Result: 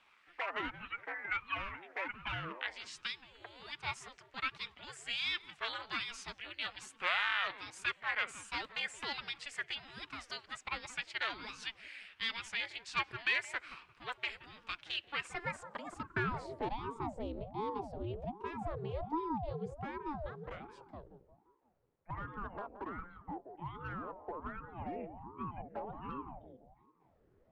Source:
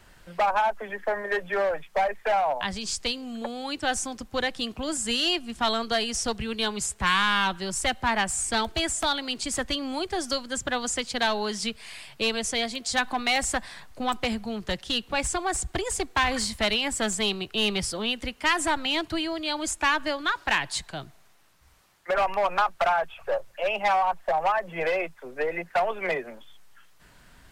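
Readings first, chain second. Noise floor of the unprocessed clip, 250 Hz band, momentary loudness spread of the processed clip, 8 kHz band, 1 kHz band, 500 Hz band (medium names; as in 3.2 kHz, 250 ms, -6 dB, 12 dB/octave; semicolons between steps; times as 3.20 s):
-55 dBFS, -14.5 dB, 12 LU, -24.0 dB, -15.0 dB, -17.0 dB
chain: band-passed feedback delay 174 ms, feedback 51%, band-pass 350 Hz, level -7.5 dB; band-pass sweep 2.1 kHz -> 260 Hz, 15.07–17.25 s; ring modulator with a swept carrier 410 Hz, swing 70%, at 1.3 Hz; trim -1 dB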